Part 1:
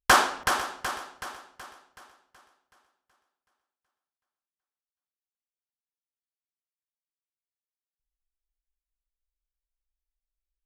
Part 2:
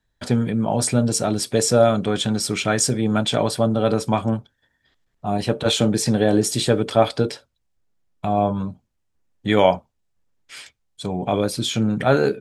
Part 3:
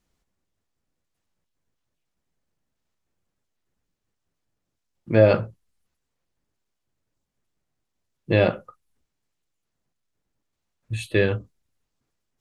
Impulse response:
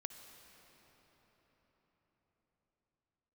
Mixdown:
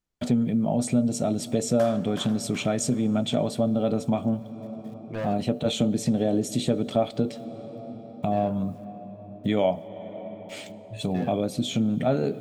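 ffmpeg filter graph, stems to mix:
-filter_complex "[0:a]adelay=1700,volume=-11dB[a];[1:a]equalizer=f=160:t=o:w=0.33:g=10,equalizer=f=250:t=o:w=0.33:g=11,equalizer=f=630:t=o:w=0.33:g=7,equalizer=f=1k:t=o:w=0.33:g=-6,equalizer=f=1.6k:t=o:w=0.33:g=-11,equalizer=f=5k:t=o:w=0.33:g=-8,equalizer=f=10k:t=o:w=0.33:g=-9,acrusher=bits=9:mix=0:aa=0.000001,volume=-2dB,asplit=2[b][c];[c]volume=-7.5dB[d];[2:a]asoftclip=type=hard:threshold=-15dB,volume=-13dB,asplit=2[e][f];[f]volume=-8.5dB[g];[3:a]atrim=start_sample=2205[h];[d][g]amix=inputs=2:normalize=0[i];[i][h]afir=irnorm=-1:irlink=0[j];[a][b][e][j]amix=inputs=4:normalize=0,acompressor=threshold=-28dB:ratio=2"

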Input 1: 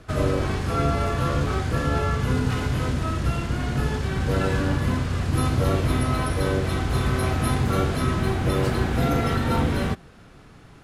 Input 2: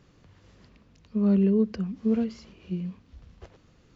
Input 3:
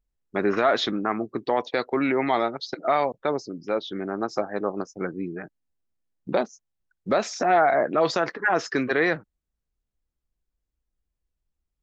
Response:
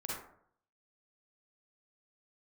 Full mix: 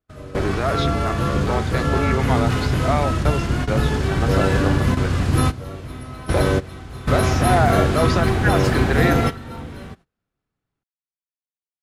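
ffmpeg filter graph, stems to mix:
-filter_complex "[0:a]volume=1.5dB[a];[1:a]volume=-10.5dB[b];[2:a]highpass=160,volume=-3dB,asplit=2[c][d];[d]apad=whole_len=477707[e];[a][e]sidechaingate=range=-16dB:threshold=-45dB:ratio=16:detection=peak[f];[f][b][c]amix=inputs=3:normalize=0,agate=range=-22dB:threshold=-48dB:ratio=16:detection=peak,dynaudnorm=f=820:g=5:m=4dB"

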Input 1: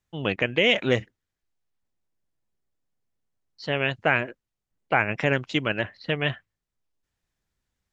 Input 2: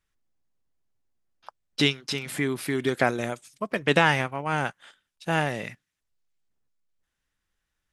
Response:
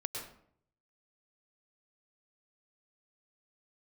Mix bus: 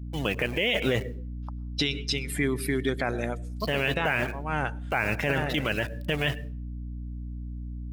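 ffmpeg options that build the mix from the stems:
-filter_complex "[0:a]acrusher=bits=5:mix=0:aa=0.000001,aeval=exprs='val(0)+0.0112*(sin(2*PI*60*n/s)+sin(2*PI*2*60*n/s)/2+sin(2*PI*3*60*n/s)/3+sin(2*PI*4*60*n/s)/4+sin(2*PI*5*60*n/s)/5)':c=same,volume=-0.5dB,asplit=3[a][b][c];[b]volume=-14.5dB[d];[1:a]dynaudnorm=f=320:g=3:m=7dB,aeval=exprs='val(0)+0.0112*(sin(2*PI*60*n/s)+sin(2*PI*2*60*n/s)/2+sin(2*PI*3*60*n/s)/3+sin(2*PI*4*60*n/s)/4+sin(2*PI*5*60*n/s)/5)':c=same,volume=-7dB,asplit=2[e][f];[f]volume=-13dB[g];[c]apad=whole_len=349554[h];[e][h]sidechaincompress=threshold=-30dB:ratio=3:attack=48:release=405[i];[2:a]atrim=start_sample=2205[j];[d][g]amix=inputs=2:normalize=0[k];[k][j]afir=irnorm=-1:irlink=0[l];[a][i][l]amix=inputs=3:normalize=0,afftdn=nr=14:nf=-37,highshelf=f=4k:g=7.5,alimiter=limit=-14dB:level=0:latency=1:release=12"

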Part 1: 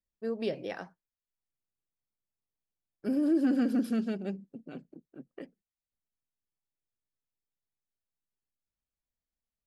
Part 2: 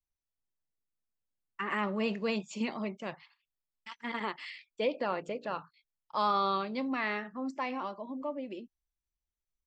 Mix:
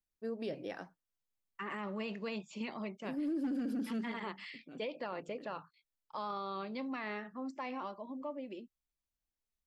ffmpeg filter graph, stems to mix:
-filter_complex "[0:a]equalizer=f=290:t=o:w=0.24:g=5,asoftclip=type=hard:threshold=-18.5dB,volume=-5dB[a];[1:a]acrossover=split=820|4900[b][c][d];[b]acompressor=threshold=-33dB:ratio=4[e];[c]acompressor=threshold=-36dB:ratio=4[f];[d]acompressor=threshold=-59dB:ratio=4[g];[e][f][g]amix=inputs=3:normalize=0,volume=-4dB,asplit=2[h][i];[i]apad=whole_len=426277[j];[a][j]sidechaincompress=threshold=-44dB:ratio=8:attack=11:release=904[k];[k][h]amix=inputs=2:normalize=0,alimiter=level_in=6.5dB:limit=-24dB:level=0:latency=1:release=10,volume=-6.5dB"

